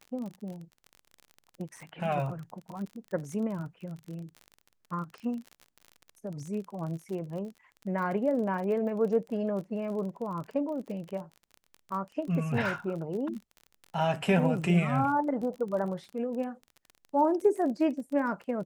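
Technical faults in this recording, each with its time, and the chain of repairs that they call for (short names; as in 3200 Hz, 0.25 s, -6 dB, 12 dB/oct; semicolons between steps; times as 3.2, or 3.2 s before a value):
crackle 33/s -37 dBFS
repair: de-click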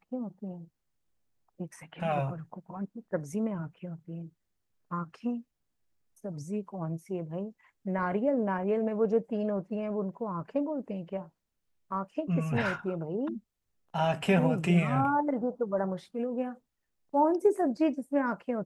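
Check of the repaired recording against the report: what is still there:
none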